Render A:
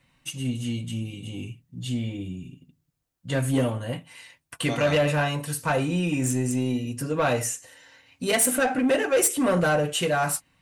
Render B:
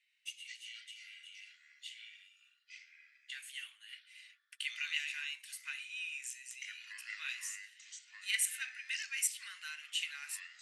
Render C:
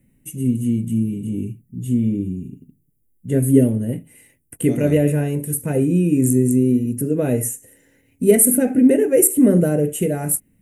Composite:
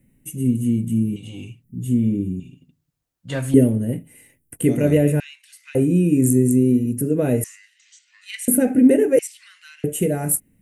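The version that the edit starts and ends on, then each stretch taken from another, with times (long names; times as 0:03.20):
C
0:01.16–0:01.64: punch in from A
0:02.40–0:03.54: punch in from A
0:05.20–0:05.75: punch in from B
0:07.44–0:08.48: punch in from B
0:09.19–0:09.84: punch in from B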